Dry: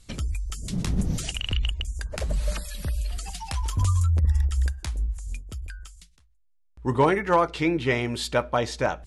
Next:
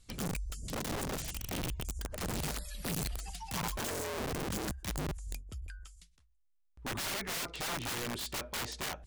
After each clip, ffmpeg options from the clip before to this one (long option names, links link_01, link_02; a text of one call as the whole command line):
ffmpeg -i in.wav -af "aeval=exprs='(mod(15*val(0)+1,2)-1)/15':channel_layout=same,volume=-8dB" out.wav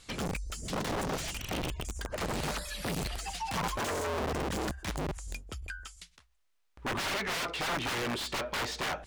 ffmpeg -i in.wav -filter_complex "[0:a]asplit=2[link_01][link_02];[link_02]highpass=frequency=720:poles=1,volume=18dB,asoftclip=type=tanh:threshold=-31.5dB[link_03];[link_01][link_03]amix=inputs=2:normalize=0,lowpass=frequency=3100:poles=1,volume=-6dB,volume=4.5dB" out.wav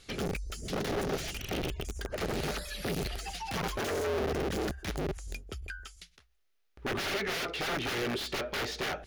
ffmpeg -i in.wav -af "equalizer=frequency=400:width_type=o:width=0.33:gain=7,equalizer=frequency=1000:width_type=o:width=0.33:gain=-8,equalizer=frequency=8000:width_type=o:width=0.33:gain=-8" out.wav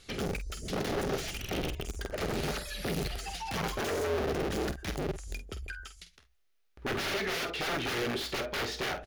ffmpeg -i in.wav -filter_complex "[0:a]asplit=2[link_01][link_02];[link_02]adelay=48,volume=-10.5dB[link_03];[link_01][link_03]amix=inputs=2:normalize=0" out.wav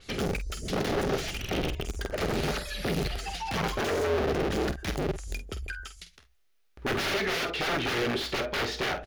ffmpeg -i in.wav -af "adynamicequalizer=threshold=0.00316:dfrequency=6000:dqfactor=0.7:tfrequency=6000:tqfactor=0.7:attack=5:release=100:ratio=0.375:range=3:mode=cutabove:tftype=highshelf,volume=4dB" out.wav